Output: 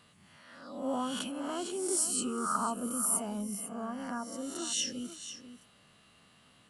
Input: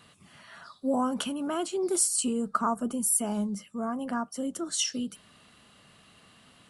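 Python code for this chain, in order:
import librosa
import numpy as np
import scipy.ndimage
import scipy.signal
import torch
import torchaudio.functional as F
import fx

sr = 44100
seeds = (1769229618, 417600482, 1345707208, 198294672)

y = fx.spec_swells(x, sr, rise_s=0.76)
y = y + 10.0 ** (-11.5 / 20.0) * np.pad(y, (int(494 * sr / 1000.0), 0))[:len(y)]
y = F.gain(torch.from_numpy(y), -7.5).numpy()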